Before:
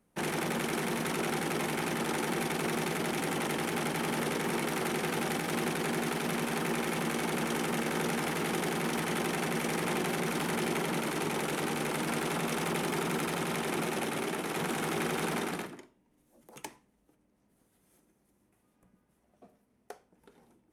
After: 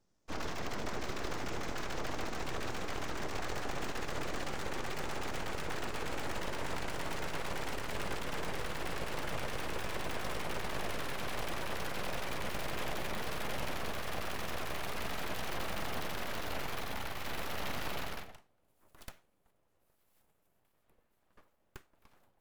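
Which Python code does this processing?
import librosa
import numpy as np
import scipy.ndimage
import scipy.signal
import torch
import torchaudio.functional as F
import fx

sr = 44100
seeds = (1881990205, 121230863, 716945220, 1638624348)

y = fx.speed_glide(x, sr, from_pct=57, to_pct=128)
y = np.abs(y)
y = fx.dynamic_eq(y, sr, hz=9100.0, q=1.0, threshold_db=-59.0, ratio=4.0, max_db=-7)
y = y * 10.0 ** (-2.5 / 20.0)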